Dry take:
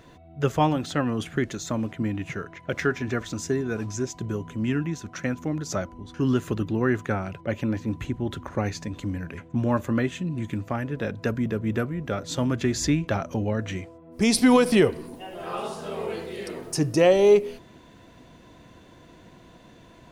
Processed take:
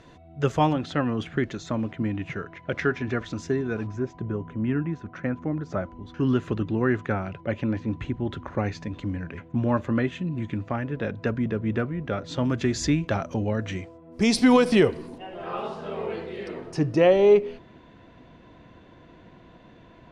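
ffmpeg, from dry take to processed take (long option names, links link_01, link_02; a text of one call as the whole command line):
ffmpeg -i in.wav -af "asetnsamples=nb_out_samples=441:pad=0,asendcmd='0.73 lowpass f 3900;3.87 lowpass f 1800;5.86 lowpass f 3700;12.45 lowpass f 6600;15.18 lowpass f 3100',lowpass=7300" out.wav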